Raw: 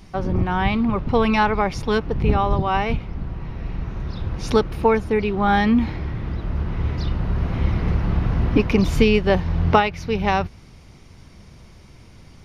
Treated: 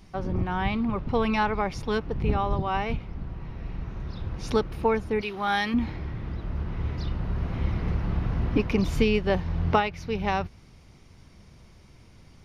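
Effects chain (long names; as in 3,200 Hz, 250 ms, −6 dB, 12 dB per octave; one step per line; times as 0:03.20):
0:05.21–0:05.74: spectral tilt +3.5 dB per octave
level −6.5 dB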